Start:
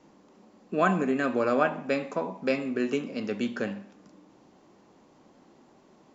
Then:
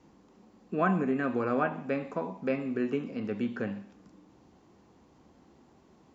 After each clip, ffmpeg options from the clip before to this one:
-filter_complex "[0:a]equalizer=f=68:w=0.9:g=14.5,bandreject=f=590:w=12,acrossover=split=2700[a][b];[b]acompressor=threshold=-59dB:ratio=4:attack=1:release=60[c];[a][c]amix=inputs=2:normalize=0,volume=-3.5dB"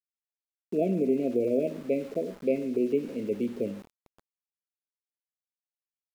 -af "equalizer=f=410:w=0.9:g=11.5,afftfilt=real='re*(1-between(b*sr/4096,710,2000))':imag='im*(1-between(b*sr/4096,710,2000))':win_size=4096:overlap=0.75,aeval=exprs='val(0)*gte(abs(val(0)),0.00944)':c=same,volume=-5dB"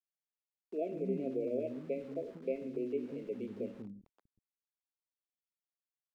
-filter_complex "[0:a]lowpass=f=2.8k:p=1,acrossover=split=270[a][b];[a]adelay=190[c];[c][b]amix=inputs=2:normalize=0,volume=-8dB"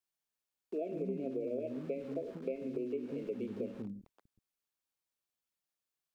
-af "bandreject=f=2k:w=22,acompressor=threshold=-39dB:ratio=4,volume=4.5dB"

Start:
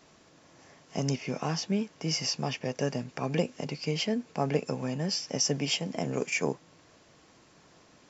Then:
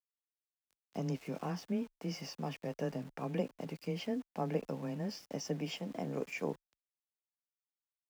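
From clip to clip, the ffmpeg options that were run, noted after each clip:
-af "lowpass=f=1.6k:p=1,aeval=exprs='val(0)*gte(abs(val(0)),0.00501)':c=same,afreqshift=14,volume=-6.5dB"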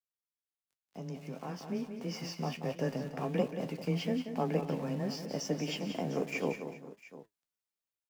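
-af "flanger=delay=7.5:depth=4.7:regen=60:speed=1.4:shape=sinusoidal,aecho=1:1:182|246|397|702:0.355|0.126|0.112|0.15,dynaudnorm=f=380:g=9:m=11.5dB,volume=-3.5dB"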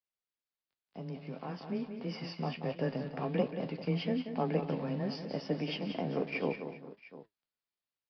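-af "aresample=11025,aresample=44100"

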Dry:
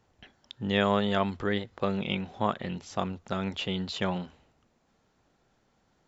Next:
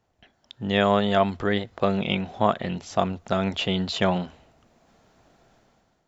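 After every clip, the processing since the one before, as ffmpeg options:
-af "equalizer=f=670:w=6.3:g=7,dynaudnorm=f=150:g=7:m=13.5dB,volume=-4dB"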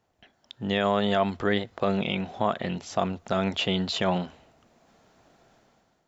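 -af "alimiter=limit=-11dB:level=0:latency=1:release=60,lowshelf=f=90:g=-7.5"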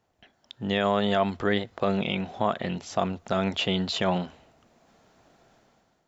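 -af anull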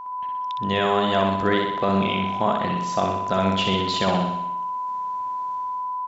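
-af "aeval=exprs='val(0)+0.0178*sin(2*PI*1000*n/s)':c=same,aecho=1:1:62|124|186|248|310|372|434|496:0.631|0.366|0.212|0.123|0.0714|0.0414|0.024|0.0139,volume=2dB"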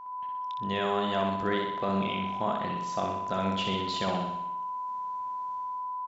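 -filter_complex "[0:a]asplit=2[a][b];[b]adelay=25,volume=-13dB[c];[a][c]amix=inputs=2:normalize=0,volume=-8.5dB"

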